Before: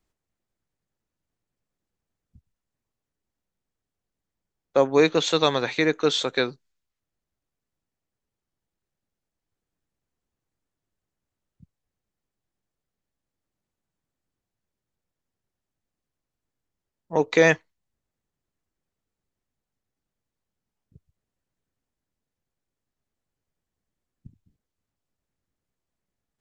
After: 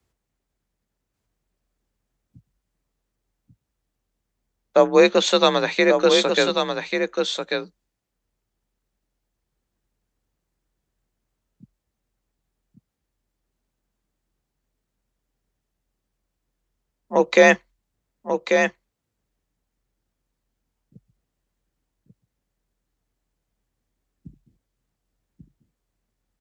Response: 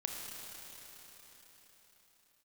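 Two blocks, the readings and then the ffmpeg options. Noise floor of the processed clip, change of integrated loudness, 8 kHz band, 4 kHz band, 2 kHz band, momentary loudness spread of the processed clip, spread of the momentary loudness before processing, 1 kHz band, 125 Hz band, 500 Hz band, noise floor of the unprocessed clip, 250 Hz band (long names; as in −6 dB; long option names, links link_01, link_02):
−80 dBFS, +3.0 dB, +5.0 dB, +5.0 dB, +5.0 dB, 12 LU, 9 LU, +6.0 dB, −1.0 dB, +5.5 dB, below −85 dBFS, +3.5 dB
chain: -af "aecho=1:1:1140:0.531,afreqshift=42,volume=4dB"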